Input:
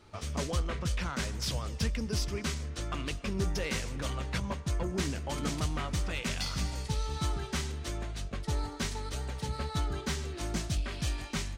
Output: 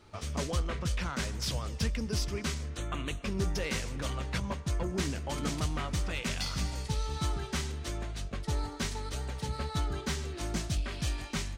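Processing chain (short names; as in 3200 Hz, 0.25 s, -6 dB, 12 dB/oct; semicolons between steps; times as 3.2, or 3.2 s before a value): 2.77–3.23 Butterworth band-stop 5000 Hz, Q 2.5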